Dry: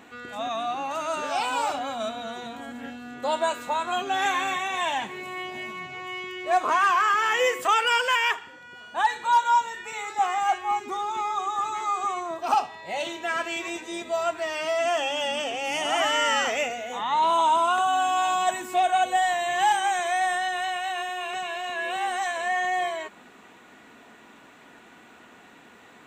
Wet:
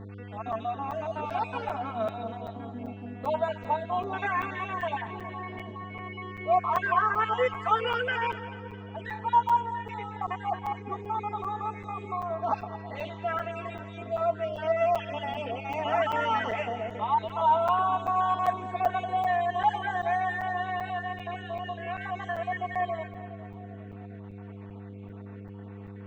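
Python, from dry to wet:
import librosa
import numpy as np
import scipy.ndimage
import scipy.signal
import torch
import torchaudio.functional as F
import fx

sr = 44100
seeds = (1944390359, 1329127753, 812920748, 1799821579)

y = fx.spec_dropout(x, sr, seeds[0], share_pct=35)
y = scipy.signal.sosfilt(scipy.signal.bessel(2, 1400.0, 'lowpass', norm='mag', fs=sr, output='sos'), y)
y = fx.low_shelf(y, sr, hz=140.0, db=-11.0)
y = y + 0.91 * np.pad(y, (int(4.5 * sr / 1000.0), 0))[:len(y)]
y = fx.dmg_buzz(y, sr, base_hz=100.0, harmonics=5, level_db=-40.0, tilt_db=-6, odd_only=False)
y = fx.echo_split(y, sr, split_hz=780.0, low_ms=405, high_ms=218, feedback_pct=52, wet_db=-13.5)
y = fx.buffer_crackle(y, sr, first_s=0.52, period_s=0.39, block=256, kind='zero')
y = y * 10.0 ** (-2.5 / 20.0)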